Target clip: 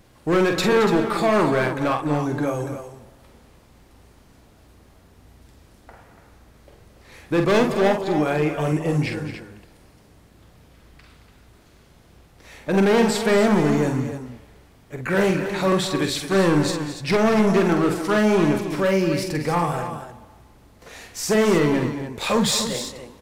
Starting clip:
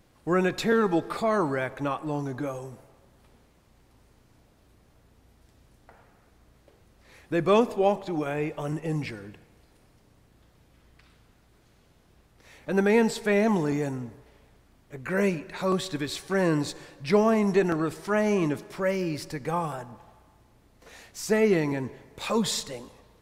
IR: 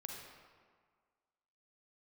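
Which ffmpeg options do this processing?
-af "volume=22.5dB,asoftclip=hard,volume=-22.5dB,aecho=1:1:46.65|221.6|288.6:0.501|0.251|0.316,volume=7dB"

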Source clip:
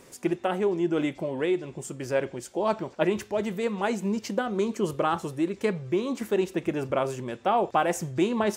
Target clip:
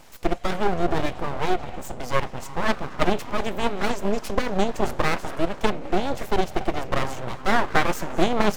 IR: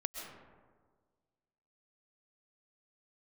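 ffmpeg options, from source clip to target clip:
-filter_complex "[0:a]equalizer=f=9.5k:w=1.5:g=-6,asplit=2[a][b];[1:a]atrim=start_sample=2205,asetrate=27783,aresample=44100[c];[b][c]afir=irnorm=-1:irlink=0,volume=-13dB[d];[a][d]amix=inputs=2:normalize=0,aeval=exprs='0.422*(cos(1*acos(clip(val(0)/0.422,-1,1)))-cos(1*PI/2))+0.0944*(cos(4*acos(clip(val(0)/0.422,-1,1)))-cos(4*PI/2))':c=same,aeval=exprs='abs(val(0))':c=same,volume=3dB"

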